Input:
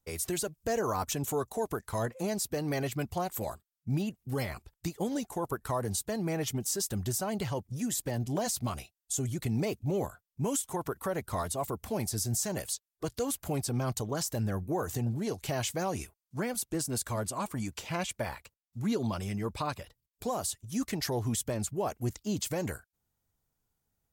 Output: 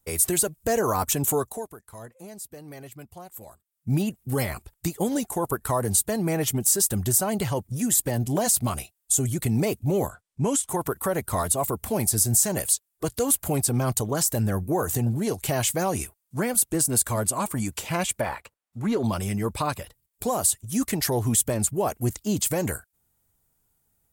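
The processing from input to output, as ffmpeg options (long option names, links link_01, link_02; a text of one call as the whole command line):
ffmpeg -i in.wav -filter_complex "[0:a]asettb=1/sr,asplit=3[link_01][link_02][link_03];[link_01]atrim=end=10.094[link_04];[link_02]atrim=start=10.09:end=10.69,asetpts=PTS-STARTPTS,afade=type=in:duration=0.004:curve=qsin,afade=type=out:start_time=0.596:duration=0.004:curve=qsin,lowpass=7000[link_05];[link_03]atrim=start=10.686[link_06];[link_04][link_05]acrossfade=duration=0.004:curve1=hsin:curve2=qsin[link_07];[link_07][link_06]acrossfade=duration=0.004:curve1=qsin:curve2=hsin,asettb=1/sr,asplit=3[link_08][link_09][link_10];[link_08]atrim=end=18.214[link_11];[link_09]atrim=start=18.21:end=19.04,asetpts=PTS-STARTPTS,afade=type=in:duration=0.004:curve=qsin,afade=type=out:start_time=0.826:duration=0.004:curve=qsin,asplit=2[link_12][link_13];[link_13]highpass=frequency=720:poles=1,volume=12dB,asoftclip=type=tanh:threshold=-22dB[link_14];[link_12][link_14]amix=inputs=2:normalize=0,lowpass=frequency=1200:poles=1,volume=-6dB[link_15];[link_10]atrim=start=19.036[link_16];[link_11][link_15]acrossfade=duration=0.004:curve1=hsin:curve2=qsin[link_17];[link_17][link_16]acrossfade=duration=0.004:curve1=qsin:curve2=hsin,asplit=3[link_18][link_19][link_20];[link_18]atrim=end=1.7,asetpts=PTS-STARTPTS,afade=type=out:start_time=1.35:duration=0.35:silence=0.141254[link_21];[link_19]atrim=start=1.7:end=3.57,asetpts=PTS-STARTPTS,volume=-17dB[link_22];[link_20]atrim=start=3.57,asetpts=PTS-STARTPTS,afade=type=in:duration=0.35:silence=0.141254[link_23];[link_21][link_22][link_23]concat=n=3:v=0:a=1,highshelf=frequency=7100:width_type=q:width=1.5:gain=6,volume=7dB" out.wav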